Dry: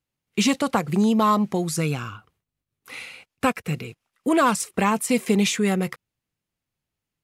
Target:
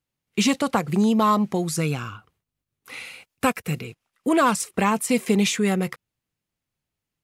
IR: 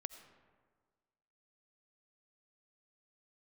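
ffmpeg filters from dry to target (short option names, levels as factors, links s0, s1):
-filter_complex "[0:a]asettb=1/sr,asplit=3[s0][s1][s2];[s0]atrim=end=3.054[s3];[s1]atrim=start=3.05:end=3.79,asetpts=PTS-STARTPTS,afade=t=in:d=0.004:c=qsin,afade=t=out:st=0.736:d=0.004:c=qsin,highshelf=f=8600:g=8.5[s4];[s2]atrim=start=3.786[s5];[s3][s4]acrossfade=d=0.004:c1=hsin:c2=qsin[s6];[s6][s5]acrossfade=d=0.004:c1=qsin:c2=hsin"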